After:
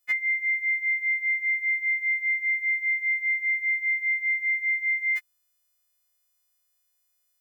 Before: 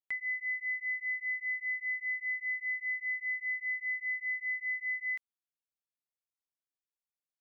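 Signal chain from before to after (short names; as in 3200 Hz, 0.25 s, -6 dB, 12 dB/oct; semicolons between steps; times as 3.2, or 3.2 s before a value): frequency quantiser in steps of 3 st; gain +9 dB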